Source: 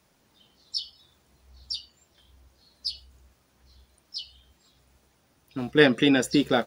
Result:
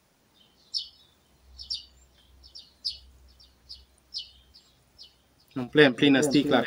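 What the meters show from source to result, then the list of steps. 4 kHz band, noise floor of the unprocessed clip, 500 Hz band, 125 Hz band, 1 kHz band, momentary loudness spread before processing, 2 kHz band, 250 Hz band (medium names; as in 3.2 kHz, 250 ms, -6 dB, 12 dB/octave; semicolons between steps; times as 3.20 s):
0.0 dB, -66 dBFS, +0.5 dB, 0.0 dB, 0.0 dB, 21 LU, 0.0 dB, 0.0 dB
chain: echo whose repeats swap between lows and highs 423 ms, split 940 Hz, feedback 55%, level -8 dB; endings held to a fixed fall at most 280 dB/s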